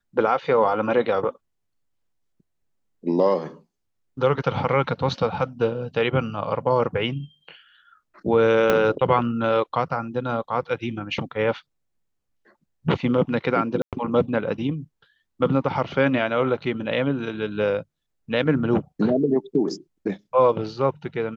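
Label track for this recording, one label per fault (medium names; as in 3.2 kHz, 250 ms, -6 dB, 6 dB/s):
8.700000	8.700000	pop -6 dBFS
13.820000	13.930000	dropout 107 ms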